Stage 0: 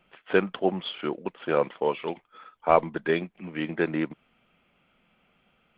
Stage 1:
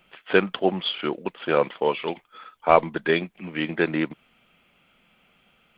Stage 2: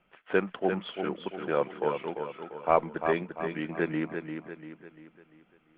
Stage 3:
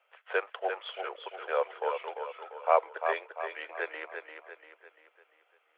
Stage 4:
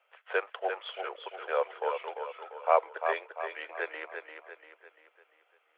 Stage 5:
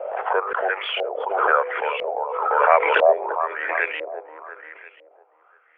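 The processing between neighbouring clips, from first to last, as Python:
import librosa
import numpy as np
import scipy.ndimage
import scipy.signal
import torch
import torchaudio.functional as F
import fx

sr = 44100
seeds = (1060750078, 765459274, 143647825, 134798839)

y1 = fx.high_shelf(x, sr, hz=3000.0, db=10.0)
y1 = y1 * librosa.db_to_amplitude(2.5)
y2 = scipy.signal.sosfilt(scipy.signal.butter(2, 2000.0, 'lowpass', fs=sr, output='sos'), y1)
y2 = fx.echo_feedback(y2, sr, ms=345, feedback_pct=45, wet_db=-7.0)
y2 = y2 * librosa.db_to_amplitude(-6.5)
y3 = scipy.signal.sosfilt(scipy.signal.butter(8, 470.0, 'highpass', fs=sr, output='sos'), y2)
y4 = y3
y5 = fx.filter_lfo_lowpass(y4, sr, shape='saw_up', hz=1.0, low_hz=540.0, high_hz=3000.0, q=4.5)
y5 = fx.hum_notches(y5, sr, base_hz=50, count=10)
y5 = fx.pre_swell(y5, sr, db_per_s=36.0)
y5 = y5 * librosa.db_to_amplitude(5.0)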